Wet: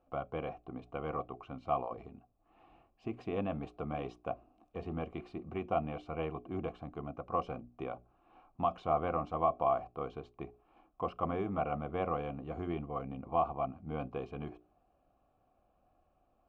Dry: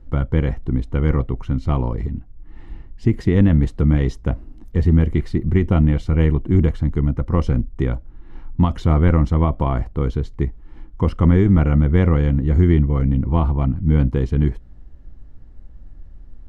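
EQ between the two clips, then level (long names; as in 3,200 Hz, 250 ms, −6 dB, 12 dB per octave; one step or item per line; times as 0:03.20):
formant filter a
mains-hum notches 60/120/180/240/300/360/420 Hz
+2.5 dB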